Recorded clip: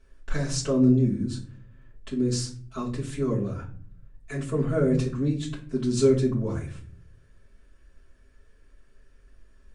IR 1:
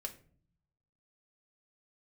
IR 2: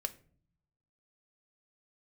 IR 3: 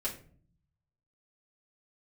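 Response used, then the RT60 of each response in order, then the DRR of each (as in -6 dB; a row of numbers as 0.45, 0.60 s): 3; 0.50, 0.50, 0.45 s; 2.0, 7.0, -7.0 dB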